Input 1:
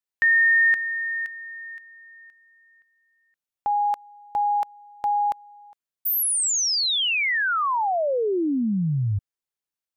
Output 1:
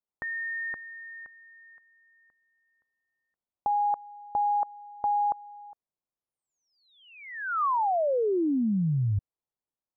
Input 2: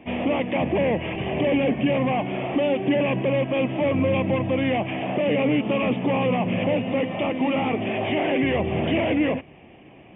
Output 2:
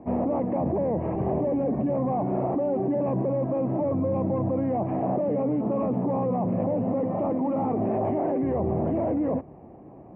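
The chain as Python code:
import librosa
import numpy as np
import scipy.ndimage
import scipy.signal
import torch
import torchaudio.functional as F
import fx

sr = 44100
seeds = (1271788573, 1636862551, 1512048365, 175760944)

p1 = scipy.signal.sosfilt(scipy.signal.butter(4, 1100.0, 'lowpass', fs=sr, output='sos'), x)
p2 = fx.over_compress(p1, sr, threshold_db=-27.0, ratio=-1.0)
p3 = p1 + F.gain(torch.from_numpy(p2), 2.5).numpy()
y = F.gain(torch.from_numpy(p3), -7.5).numpy()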